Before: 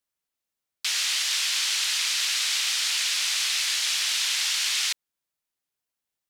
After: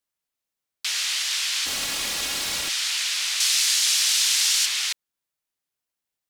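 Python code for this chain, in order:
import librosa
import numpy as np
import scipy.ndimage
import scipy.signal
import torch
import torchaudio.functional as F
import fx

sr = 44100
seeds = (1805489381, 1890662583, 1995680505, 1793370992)

y = fx.lower_of_two(x, sr, delay_ms=3.6, at=(1.65, 2.68), fade=0.02)
y = fx.bass_treble(y, sr, bass_db=-11, treble_db=8, at=(3.4, 4.66))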